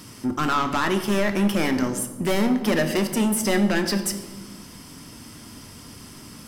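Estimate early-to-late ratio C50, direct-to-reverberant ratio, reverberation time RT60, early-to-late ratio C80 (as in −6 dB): 9.5 dB, 6.0 dB, 1.3 s, 11.0 dB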